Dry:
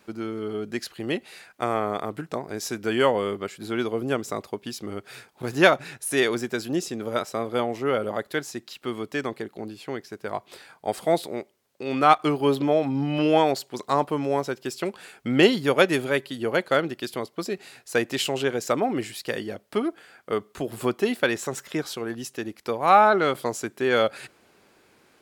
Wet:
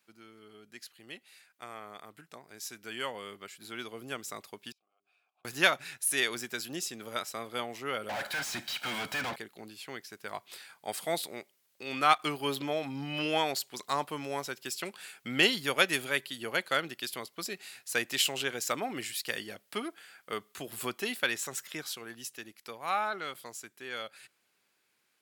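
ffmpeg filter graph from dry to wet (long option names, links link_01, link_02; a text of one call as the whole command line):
ffmpeg -i in.wav -filter_complex "[0:a]asettb=1/sr,asplit=3[link_01][link_02][link_03];[link_01]atrim=end=4.724[link_04];[link_02]atrim=start=4.72:end=5.45,asetpts=PTS-STARTPTS,afade=type=in:duration=0.004:curve=qsin,afade=type=out:start_time=0.726:duration=0.004:curve=qsin,bandreject=frequency=50:width_type=h:width=6,bandreject=frequency=100:width_type=h:width=6,bandreject=frequency=150:width_type=h:width=6,bandreject=frequency=200:width_type=h:width=6,bandreject=frequency=250:width_type=h:width=6,bandreject=frequency=300:width_type=h:width=6,bandreject=frequency=350:width_type=h:width=6,bandreject=frequency=400:width_type=h:width=6,acompressor=threshold=-49dB:ratio=10:attack=3.2:release=140:knee=1:detection=peak,asplit=3[link_05][link_06][link_07];[link_05]bandpass=frequency=730:width_type=q:width=8,volume=0dB[link_08];[link_06]bandpass=frequency=1090:width_type=q:width=8,volume=-6dB[link_09];[link_07]bandpass=frequency=2440:width_type=q:width=8,volume=-9dB[link_10];[link_08][link_09][link_10]amix=inputs=3:normalize=0[link_11];[link_03]atrim=start=5.446[link_12];[link_04][link_11]acrossfade=duration=0.004:curve1=hsin:curve2=qsin[link_13];[link_13][link_12]acrossfade=duration=0.004:curve1=qsin:curve2=hsin,asettb=1/sr,asplit=3[link_14][link_15][link_16];[link_14]atrim=end=8.094[link_17];[link_15]atrim=start=8.09:end=9.36,asetpts=PTS-STARTPTS,afade=type=in:duration=0.004:curve=qsin,afade=type=out:start_time=1.266:duration=0.004:curve=qsin,volume=25.5dB,asoftclip=hard,volume=-25.5dB,aecho=1:1:1.3:0.7,atrim=end_sample=56007,asplit=2[link_18][link_19];[link_19]highpass=frequency=720:poles=1,volume=36dB,asoftclip=type=tanh:threshold=-17dB[link_20];[link_18][link_20]amix=inputs=2:normalize=0,lowpass=frequency=1200:poles=1,volume=-6dB[link_21];[link_16]atrim=start=9.356[link_22];[link_17][link_21]acrossfade=duration=0.004:curve1=hsin:curve2=qsin[link_23];[link_23][link_22]acrossfade=duration=0.004:curve1=qsin:curve2=hsin,aderivative,dynaudnorm=framelen=240:gausssize=31:maxgain=13.5dB,bass=frequency=250:gain=14,treble=frequency=4000:gain=-9,volume=-2.5dB" out.wav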